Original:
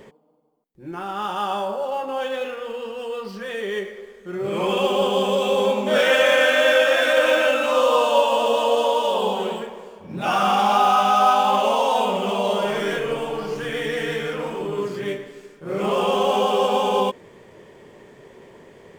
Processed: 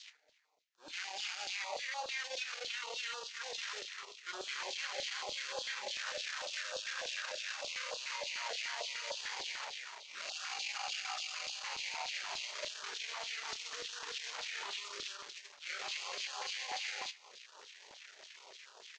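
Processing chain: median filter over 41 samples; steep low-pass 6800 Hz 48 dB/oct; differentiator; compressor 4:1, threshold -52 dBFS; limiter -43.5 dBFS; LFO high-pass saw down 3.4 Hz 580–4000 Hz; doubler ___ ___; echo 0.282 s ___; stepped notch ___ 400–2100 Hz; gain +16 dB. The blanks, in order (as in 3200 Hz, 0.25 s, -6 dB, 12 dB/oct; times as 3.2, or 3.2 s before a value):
29 ms, -13 dB, -20.5 dB, 6.7 Hz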